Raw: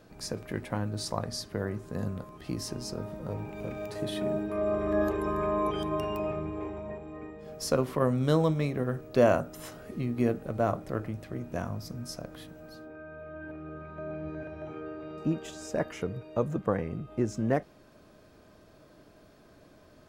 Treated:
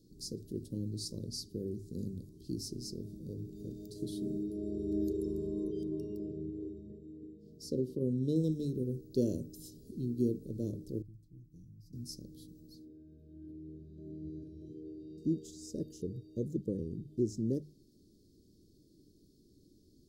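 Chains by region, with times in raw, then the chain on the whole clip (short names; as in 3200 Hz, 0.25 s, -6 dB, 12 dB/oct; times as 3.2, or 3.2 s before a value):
5.64–8.36 high shelf 4600 Hz -10.5 dB + notch comb 850 Hz
11.02–11.93 passive tone stack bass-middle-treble 10-0-1 + comb 6.5 ms, depth 73%
whole clip: dynamic EQ 530 Hz, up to +6 dB, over -40 dBFS, Q 1.3; elliptic band-stop 370–4400 Hz, stop band 40 dB; notches 50/100/150 Hz; gain -4 dB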